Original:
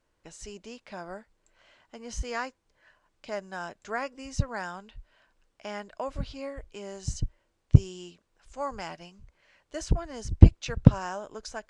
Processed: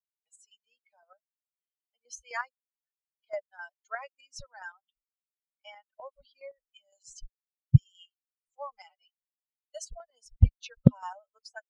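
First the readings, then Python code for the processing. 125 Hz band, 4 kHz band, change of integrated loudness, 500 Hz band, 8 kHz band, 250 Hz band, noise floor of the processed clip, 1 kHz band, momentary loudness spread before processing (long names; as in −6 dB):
−4.0 dB, −7.5 dB, −0.5 dB, −7.0 dB, −5.0 dB, −3.5 dB, below −85 dBFS, −6.0 dB, 22 LU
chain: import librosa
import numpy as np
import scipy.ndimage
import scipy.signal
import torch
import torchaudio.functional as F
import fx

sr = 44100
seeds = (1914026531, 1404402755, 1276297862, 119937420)

y = fx.bin_expand(x, sr, power=3.0)
y = scipy.signal.sosfilt(scipy.signal.ellip(3, 1.0, 40, [250.0, 510.0], 'bandstop', fs=sr, output='sos'), y)
y = fx.chopper(y, sr, hz=3.9, depth_pct=60, duty_pct=40)
y = y * librosa.db_to_amplitude(5.0)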